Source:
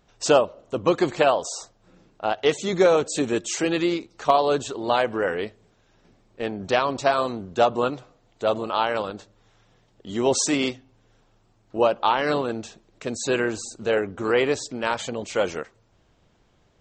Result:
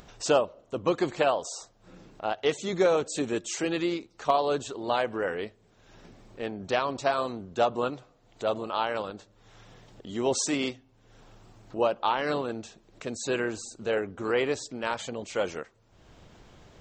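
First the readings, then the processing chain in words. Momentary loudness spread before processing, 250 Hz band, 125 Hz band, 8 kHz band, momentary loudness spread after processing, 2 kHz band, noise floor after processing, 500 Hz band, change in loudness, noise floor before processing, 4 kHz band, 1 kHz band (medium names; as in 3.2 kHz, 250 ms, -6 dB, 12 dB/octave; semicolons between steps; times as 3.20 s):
13 LU, -5.5 dB, -5.5 dB, -5.5 dB, 13 LU, -5.5 dB, -62 dBFS, -5.5 dB, -5.5 dB, -63 dBFS, -5.5 dB, -5.5 dB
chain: upward compressor, threshold -33 dBFS; trim -5.5 dB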